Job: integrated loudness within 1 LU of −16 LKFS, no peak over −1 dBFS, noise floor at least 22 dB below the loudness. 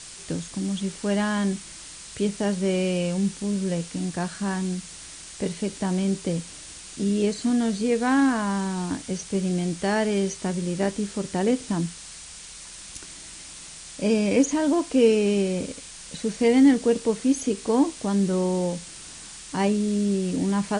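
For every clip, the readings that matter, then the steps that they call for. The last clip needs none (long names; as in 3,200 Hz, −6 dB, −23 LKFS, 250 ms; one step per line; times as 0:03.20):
background noise floor −42 dBFS; target noise floor −47 dBFS; integrated loudness −24.5 LKFS; sample peak −8.0 dBFS; target loudness −16.0 LKFS
→ noise reduction from a noise print 6 dB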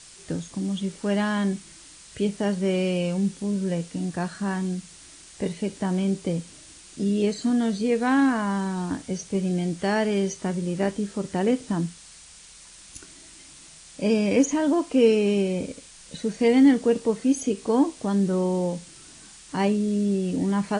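background noise floor −48 dBFS; integrated loudness −24.5 LKFS; sample peak −8.0 dBFS; target loudness −16.0 LKFS
→ level +8.5 dB
brickwall limiter −1 dBFS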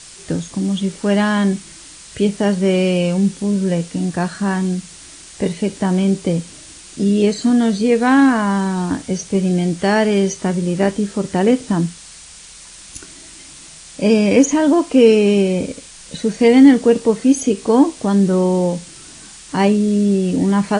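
integrated loudness −16.5 LKFS; sample peak −1.0 dBFS; background noise floor −39 dBFS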